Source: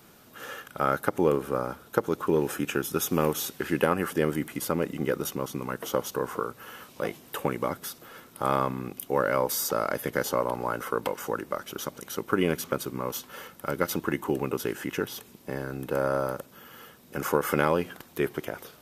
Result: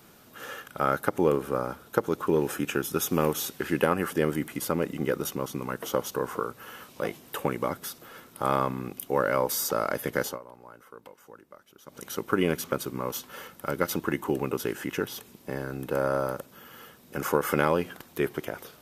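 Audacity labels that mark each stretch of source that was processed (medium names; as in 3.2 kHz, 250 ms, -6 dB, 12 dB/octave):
10.240000	12.010000	dip -19 dB, fades 0.15 s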